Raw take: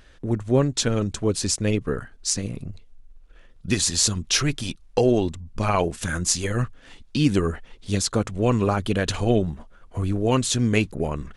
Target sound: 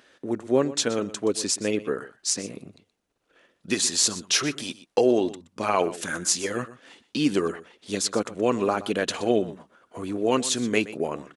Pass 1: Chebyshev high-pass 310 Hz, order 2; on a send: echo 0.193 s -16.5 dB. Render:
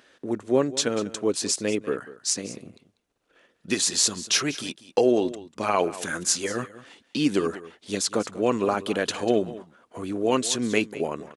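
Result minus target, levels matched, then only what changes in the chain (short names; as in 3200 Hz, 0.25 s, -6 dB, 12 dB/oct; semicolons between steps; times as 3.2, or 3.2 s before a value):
echo 70 ms late
change: echo 0.123 s -16.5 dB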